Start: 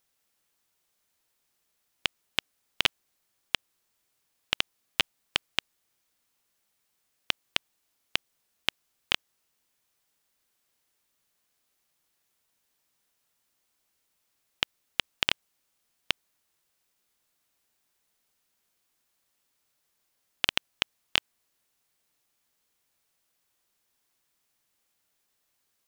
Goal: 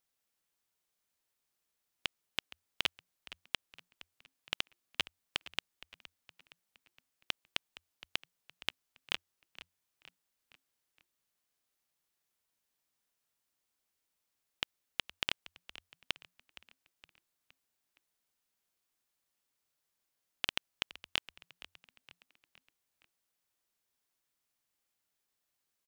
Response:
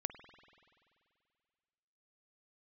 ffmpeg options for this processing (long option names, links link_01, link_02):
-filter_complex "[0:a]asplit=5[link_01][link_02][link_03][link_04][link_05];[link_02]adelay=466,afreqshift=-90,volume=-17dB[link_06];[link_03]adelay=932,afreqshift=-180,volume=-23.4dB[link_07];[link_04]adelay=1398,afreqshift=-270,volume=-29.8dB[link_08];[link_05]adelay=1864,afreqshift=-360,volume=-36.1dB[link_09];[link_01][link_06][link_07][link_08][link_09]amix=inputs=5:normalize=0,volume=-8.5dB"